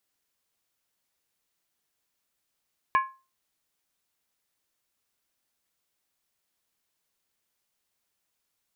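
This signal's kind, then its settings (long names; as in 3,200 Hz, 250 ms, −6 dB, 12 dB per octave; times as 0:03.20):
struck skin, lowest mode 1,060 Hz, decay 0.31 s, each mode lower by 7 dB, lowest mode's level −16 dB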